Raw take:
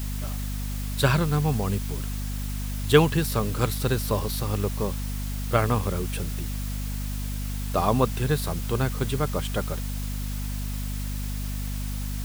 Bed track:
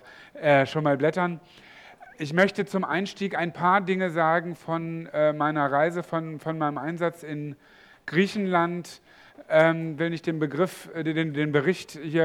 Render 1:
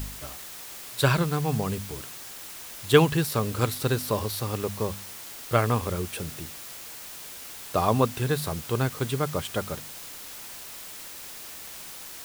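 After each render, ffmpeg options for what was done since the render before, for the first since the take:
-af "bandreject=f=50:t=h:w=4,bandreject=f=100:t=h:w=4,bandreject=f=150:t=h:w=4,bandreject=f=200:t=h:w=4,bandreject=f=250:t=h:w=4"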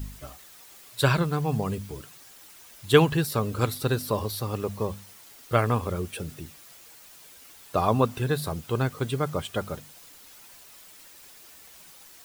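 -af "afftdn=nr=10:nf=-41"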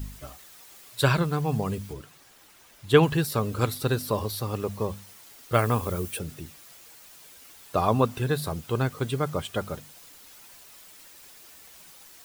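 -filter_complex "[0:a]asettb=1/sr,asplit=3[a][b][c];[a]atrim=end=1.934[d];[b]atrim=start=1.93:end=3.03,asetpts=PTS-STARTPTS,afade=t=in:d=0.004:c=qsin,afade=t=out:st=1.096:d=0.004:c=qsin,highshelf=f=3.9k:g=-7.5[e];[c]atrim=start=3.026[f];[d][e]acrossfade=d=0.004:c1=hsin:c2=qsin[g];[g][f]acrossfade=d=0.004:c1=qsin:c2=hsin,asettb=1/sr,asplit=3[h][i][j];[h]atrim=end=5.544[k];[i]atrim=start=5.54:end=6.19,asetpts=PTS-STARTPTS,afade=t=in:d=0.004:c=qsin,afade=t=out:st=0.646:d=0.004:c=qsin,highshelf=f=9.3k:g=11.5[l];[j]atrim=start=6.186[m];[k][l]acrossfade=d=0.004:c1=hsin:c2=qsin[n];[n][m]acrossfade=d=0.004:c1=qsin:c2=hsin"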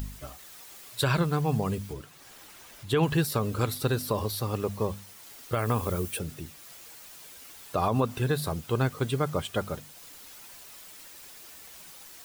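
-af "alimiter=limit=-15dB:level=0:latency=1:release=67,acompressor=mode=upward:threshold=-42dB:ratio=2.5"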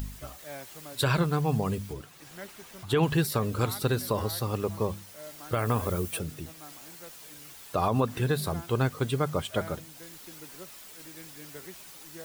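-filter_complex "[1:a]volume=-23.5dB[a];[0:a][a]amix=inputs=2:normalize=0"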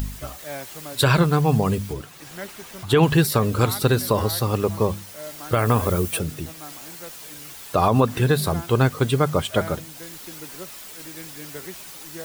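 -af "volume=8dB"

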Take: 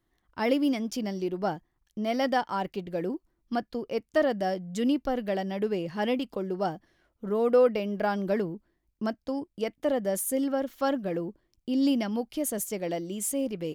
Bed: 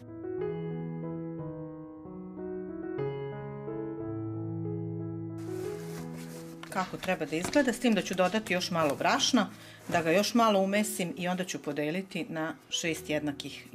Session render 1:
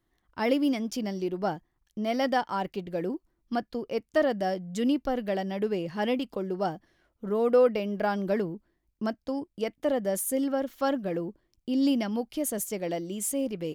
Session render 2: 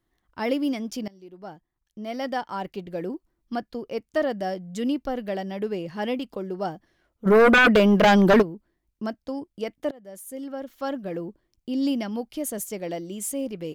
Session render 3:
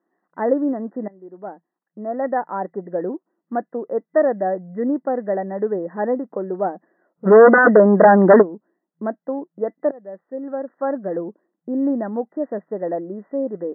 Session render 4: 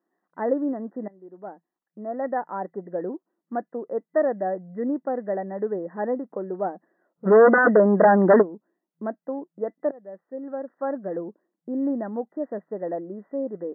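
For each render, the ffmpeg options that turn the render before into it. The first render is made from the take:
-af anull
-filter_complex "[0:a]asplit=3[a][b][c];[a]afade=t=out:st=7.25:d=0.02[d];[b]aeval=exprs='0.266*sin(PI/2*3.98*val(0)/0.266)':c=same,afade=t=in:st=7.25:d=0.02,afade=t=out:st=8.41:d=0.02[e];[c]afade=t=in:st=8.41:d=0.02[f];[d][e][f]amix=inputs=3:normalize=0,asplit=3[g][h][i];[g]atrim=end=1.08,asetpts=PTS-STARTPTS,afade=t=out:st=1.076:d=0.004:c=hsin:silence=0.0794328[j];[h]atrim=start=1.08:end=9.91,asetpts=PTS-STARTPTS,afade=t=in:d=1.71:silence=0.0794328,afade=t=out:st=8.826:d=0.004:c=hsin:silence=0.0707946[k];[i]atrim=start=9.91,asetpts=PTS-STARTPTS,afade=t=in:d=1.33:silence=0.0707946[l];[j][k][l]concat=n=3:v=0:a=1"
-af "afftfilt=real='re*between(b*sr/4096,170,2000)':imag='im*between(b*sr/4096,170,2000)':win_size=4096:overlap=0.75,equalizer=f=560:t=o:w=1.9:g=8.5"
-af "volume=-5dB"

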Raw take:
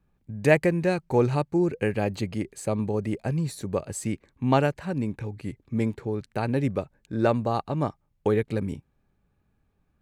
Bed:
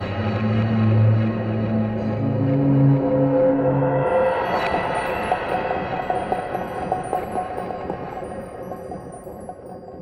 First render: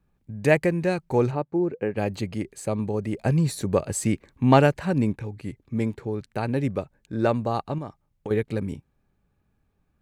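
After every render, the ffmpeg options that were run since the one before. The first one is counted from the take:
-filter_complex "[0:a]asplit=3[a][b][c];[a]afade=t=out:st=1.3:d=0.02[d];[b]bandpass=f=480:t=q:w=0.5,afade=t=in:st=1.3:d=0.02,afade=t=out:st=1.96:d=0.02[e];[c]afade=t=in:st=1.96:d=0.02[f];[d][e][f]amix=inputs=3:normalize=0,asettb=1/sr,asplit=3[g][h][i];[g]atrim=end=3.184[j];[h]atrim=start=3.18:end=5.13,asetpts=PTS-STARTPTS,afade=t=in:d=0.004:c=qsin,afade=t=out:st=1.946:d=0.004:c=qsin,acontrast=38[k];[i]atrim=start=5.126[l];[j][k]acrossfade=d=0.004:c1=hsin:c2=qsin[m];[m][l]acrossfade=d=0.004:c1=qsin:c2=hsin,asettb=1/sr,asplit=3[n][o][p];[n]atrim=end=7.784[q];[o]atrim=start=7.78:end=8.31,asetpts=PTS-STARTPTS,afade=t=in:d=0.004:c=qsin,afade=t=out:st=0.526:d=0.004:c=qsin,acompressor=threshold=-31dB:ratio=4:attack=3.2:release=140:knee=1:detection=peak[r];[p]atrim=start=8.306[s];[q][r]acrossfade=d=0.004:c1=hsin:c2=qsin[t];[t][s]acrossfade=d=0.004:c1=qsin:c2=hsin"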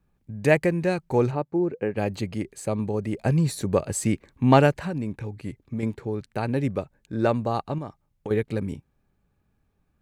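-filter_complex "[0:a]asettb=1/sr,asplit=3[a][b][c];[a]atrim=end=4.714[d];[b]atrim=start=4.71:end=5.83,asetpts=PTS-STARTPTS,afade=t=in:d=0.004:c=qsin,afade=t=out:st=1.116:d=0.004:c=qsin,acompressor=threshold=-25dB:ratio=6:attack=3.2:release=140:knee=1:detection=peak[e];[c]atrim=start=5.826[f];[d][e]acrossfade=d=0.004:c1=hsin:c2=qsin[g];[g][f]acrossfade=d=0.004:c1=qsin:c2=hsin"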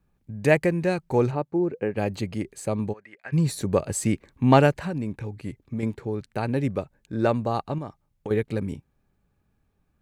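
-filter_complex "[0:a]asplit=3[a][b][c];[a]afade=t=out:st=2.92:d=0.02[d];[b]bandpass=f=1.8k:t=q:w=3,afade=t=in:st=2.92:d=0.02,afade=t=out:st=3.32:d=0.02[e];[c]afade=t=in:st=3.32:d=0.02[f];[d][e][f]amix=inputs=3:normalize=0"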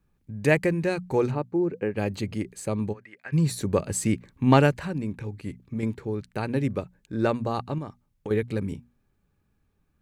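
-af "equalizer=f=690:t=o:w=0.7:g=-4.5,bandreject=f=60:t=h:w=6,bandreject=f=120:t=h:w=6,bandreject=f=180:t=h:w=6,bandreject=f=240:t=h:w=6"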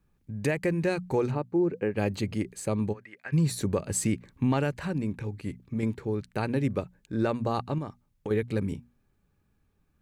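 -af "alimiter=limit=-17dB:level=0:latency=1:release=188"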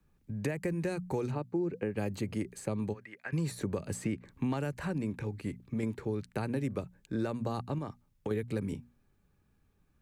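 -filter_complex "[0:a]acrossover=split=100|280|2500|5800[a][b][c][d][e];[a]acompressor=threshold=-47dB:ratio=4[f];[b]acompressor=threshold=-36dB:ratio=4[g];[c]acompressor=threshold=-35dB:ratio=4[h];[d]acompressor=threshold=-58dB:ratio=4[i];[e]acompressor=threshold=-48dB:ratio=4[j];[f][g][h][i][j]amix=inputs=5:normalize=0"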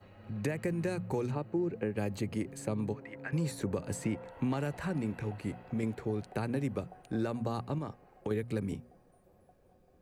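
-filter_complex "[1:a]volume=-30dB[a];[0:a][a]amix=inputs=2:normalize=0"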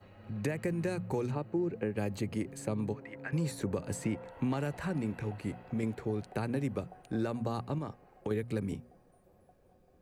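-af anull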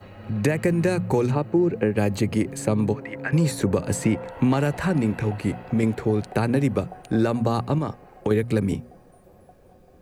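-af "volume=12dB"

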